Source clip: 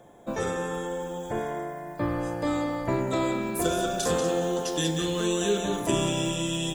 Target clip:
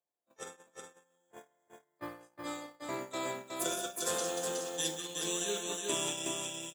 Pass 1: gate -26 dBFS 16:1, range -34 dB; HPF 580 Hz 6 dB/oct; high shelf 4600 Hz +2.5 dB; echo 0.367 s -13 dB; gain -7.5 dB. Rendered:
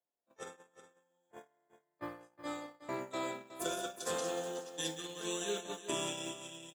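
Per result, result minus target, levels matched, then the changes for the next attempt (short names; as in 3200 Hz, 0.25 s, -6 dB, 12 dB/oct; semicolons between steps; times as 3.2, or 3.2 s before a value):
echo-to-direct -9 dB; 8000 Hz band -3.0 dB
change: echo 0.367 s -4 dB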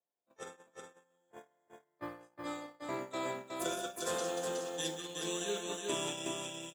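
8000 Hz band -3.5 dB
change: high shelf 4600 Hz +11 dB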